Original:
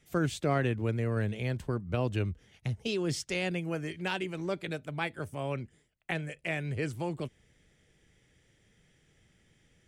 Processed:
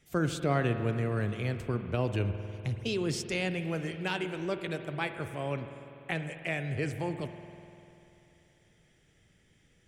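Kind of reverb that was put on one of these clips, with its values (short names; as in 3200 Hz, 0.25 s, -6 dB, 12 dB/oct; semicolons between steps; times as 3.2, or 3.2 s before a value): spring tank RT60 3 s, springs 49 ms, chirp 55 ms, DRR 8.5 dB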